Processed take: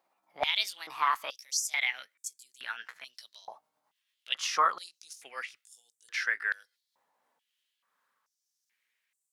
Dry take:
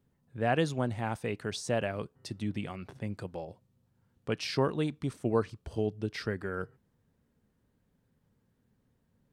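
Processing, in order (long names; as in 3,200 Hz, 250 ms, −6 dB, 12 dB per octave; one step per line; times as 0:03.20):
pitch glide at a constant tempo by +5 semitones ending unshifted
high-pass on a step sequencer 2.3 Hz 850–7,800 Hz
level +3.5 dB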